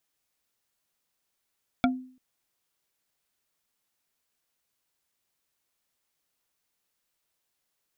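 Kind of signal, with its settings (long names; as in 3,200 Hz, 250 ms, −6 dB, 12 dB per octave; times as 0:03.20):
struck wood bar, length 0.34 s, lowest mode 256 Hz, decay 0.48 s, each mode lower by 1.5 dB, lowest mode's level −18 dB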